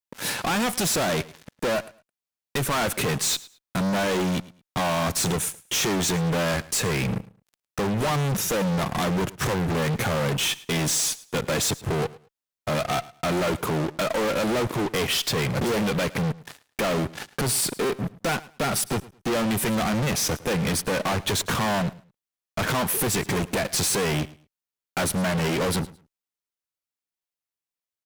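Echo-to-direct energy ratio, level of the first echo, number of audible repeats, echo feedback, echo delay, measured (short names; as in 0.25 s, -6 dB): -20.0 dB, -20.0 dB, 2, 22%, 0.108 s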